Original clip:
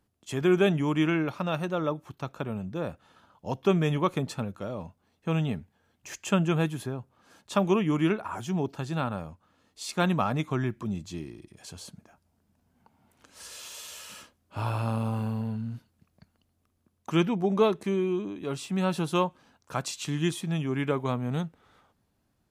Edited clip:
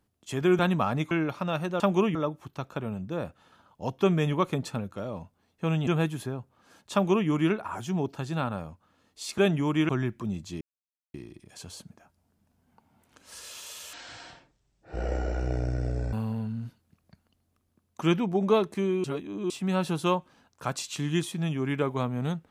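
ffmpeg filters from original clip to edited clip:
-filter_complex "[0:a]asplit=13[s0][s1][s2][s3][s4][s5][s6][s7][s8][s9][s10][s11][s12];[s0]atrim=end=0.592[s13];[s1]atrim=start=9.978:end=10.502[s14];[s2]atrim=start=1.098:end=1.792[s15];[s3]atrim=start=7.528:end=7.882[s16];[s4]atrim=start=1.788:end=5.512[s17];[s5]atrim=start=6.468:end=9.982[s18];[s6]atrim=start=0.588:end=1.102[s19];[s7]atrim=start=10.498:end=11.22,asetpts=PTS-STARTPTS,afade=t=out:st=0.718:d=0.004:c=hsin,apad=pad_dur=0.53[s20];[s8]atrim=start=11.22:end=14.014,asetpts=PTS-STARTPTS,afade=t=in:d=0.004:c=hsin[s21];[s9]atrim=start=14.01:end=15.22,asetpts=PTS-STARTPTS,asetrate=24255,aresample=44100[s22];[s10]atrim=start=15.216:end=18.132[s23];[s11]atrim=start=18.128:end=18.592,asetpts=PTS-STARTPTS,areverse[s24];[s12]atrim=start=18.588[s25];[s13][s14]acrossfade=d=0.004:c1=hsin:c2=hsin[s26];[s26][s15]acrossfade=d=0.004:c1=hsin:c2=hsin[s27];[s27][s16]acrossfade=d=0.004:c1=hsin:c2=hsin[s28];[s28][s17]acrossfade=d=0.004:c1=hsin:c2=hsin[s29];[s29][s18]acrossfade=d=0.004:c1=hsin:c2=hsin[s30];[s30][s19]acrossfade=d=0.004:c1=hsin:c2=hsin[s31];[s20][s21]concat=n=2:v=0:a=1[s32];[s31][s32]acrossfade=d=0.004:c1=hsin:c2=hsin[s33];[s33][s22]acrossfade=d=0.004:c1=hsin:c2=hsin[s34];[s34][s23]acrossfade=d=0.004:c1=hsin:c2=hsin[s35];[s35][s24]acrossfade=d=0.004:c1=hsin:c2=hsin[s36];[s36][s25]acrossfade=d=0.004:c1=hsin:c2=hsin"

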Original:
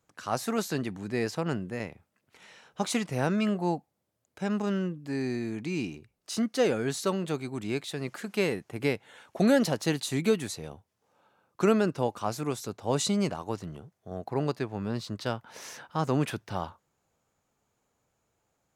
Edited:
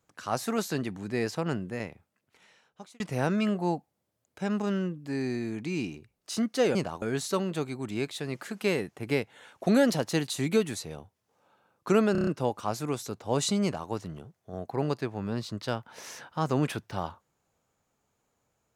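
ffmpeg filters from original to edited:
-filter_complex "[0:a]asplit=9[s0][s1][s2][s3][s4][s5][s6][s7][s8];[s0]atrim=end=3,asetpts=PTS-STARTPTS,afade=t=out:st=1.8:d=1.2[s9];[s1]atrim=start=3:end=6.752,asetpts=PTS-STARTPTS,afade=t=in:d=0.004:c=hsin[s10];[s2]atrim=start=13.208:end=13.482[s11];[s3]atrim=start=6.748:end=11.882[s12];[s4]atrim=start=11.848:end=11.882[s13];[s5]atrim=start=11.848:end=11.882[s14];[s6]atrim=start=11.848:end=11.882[s15];[s7]atrim=start=11.848:end=11.882[s16];[s8]atrim=start=11.848[s17];[s9][s10]concat=n=2:v=0:a=1[s18];[s18][s11]acrossfade=d=0.004:c1=hsin:c2=hsin[s19];[s19][s12]acrossfade=d=0.004:c1=hsin:c2=hsin[s20];[s20][s13]acrossfade=d=0.004:c1=hsin:c2=hsin[s21];[s21][s14]acrossfade=d=0.004:c1=hsin:c2=hsin[s22];[s22][s15]acrossfade=d=0.004:c1=hsin:c2=hsin[s23];[s23][s16]acrossfade=d=0.004:c1=hsin:c2=hsin[s24];[s24][s17]acrossfade=d=0.004:c1=hsin:c2=hsin"

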